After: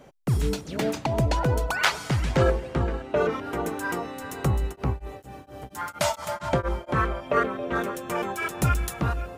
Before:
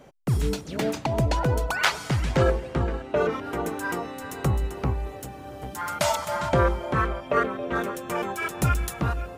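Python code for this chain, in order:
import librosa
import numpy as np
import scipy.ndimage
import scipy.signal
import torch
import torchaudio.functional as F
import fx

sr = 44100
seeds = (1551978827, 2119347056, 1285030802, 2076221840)

y = fx.tremolo_abs(x, sr, hz=4.3, at=(4.71, 6.88), fade=0.02)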